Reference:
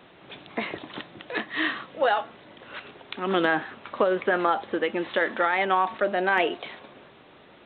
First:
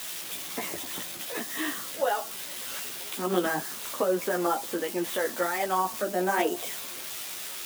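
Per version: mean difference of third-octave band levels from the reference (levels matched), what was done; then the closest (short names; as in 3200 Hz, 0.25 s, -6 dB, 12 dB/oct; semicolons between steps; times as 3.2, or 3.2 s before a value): 13.5 dB: switching spikes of -21.5 dBFS; dynamic EQ 2100 Hz, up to -6 dB, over -36 dBFS, Q 0.77; chorus voices 6, 1.3 Hz, delay 14 ms, depth 3.2 ms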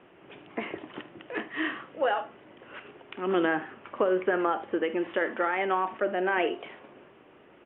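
2.0 dB: elliptic low-pass 3000 Hz, stop band 40 dB; bell 360 Hz +6 dB 0.9 oct; on a send: early reflections 49 ms -16.5 dB, 76 ms -17.5 dB; on the sum: gain -5 dB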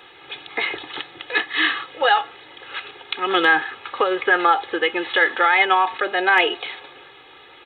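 4.5 dB: tilt shelf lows -6.5 dB, about 870 Hz; notches 50/100 Hz; comb 2.4 ms, depth 81%; gain +3 dB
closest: second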